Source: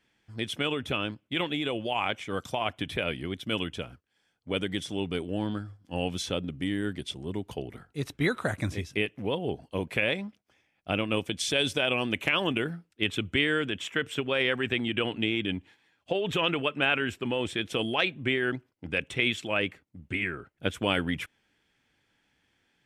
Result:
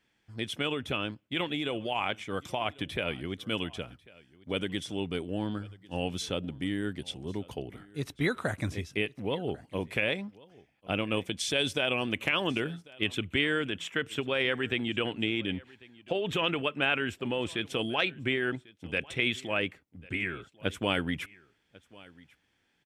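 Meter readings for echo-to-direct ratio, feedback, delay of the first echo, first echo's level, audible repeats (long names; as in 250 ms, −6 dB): −23.0 dB, repeats not evenly spaced, 1,095 ms, −23.0 dB, 1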